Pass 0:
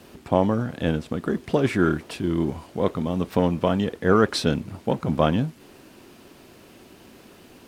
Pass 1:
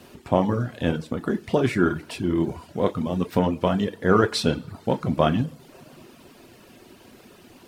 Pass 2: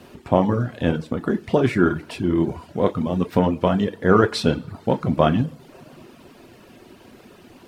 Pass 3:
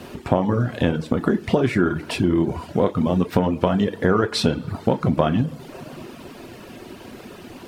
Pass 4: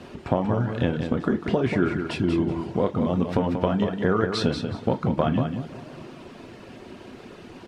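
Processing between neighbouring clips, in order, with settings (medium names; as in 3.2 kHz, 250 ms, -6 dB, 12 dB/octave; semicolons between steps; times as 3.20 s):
two-slope reverb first 0.62 s, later 3 s, from -20 dB, DRR 5 dB; reverb removal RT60 0.64 s
treble shelf 3.9 kHz -6.5 dB; trim +3 dB
compression 5:1, threshold -23 dBFS, peak gain reduction 12 dB; trim +7.5 dB
distance through air 60 m; feedback delay 186 ms, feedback 22%, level -7 dB; trim -4 dB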